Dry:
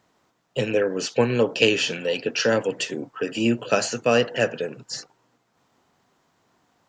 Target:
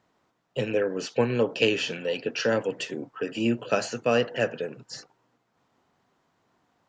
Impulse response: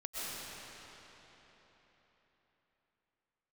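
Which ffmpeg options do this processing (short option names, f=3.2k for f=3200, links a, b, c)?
-af "highshelf=f=5.6k:g=-9,volume=-3.5dB"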